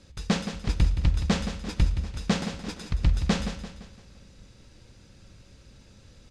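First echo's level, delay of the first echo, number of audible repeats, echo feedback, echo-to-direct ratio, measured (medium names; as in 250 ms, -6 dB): -10.0 dB, 171 ms, 4, 45%, -9.0 dB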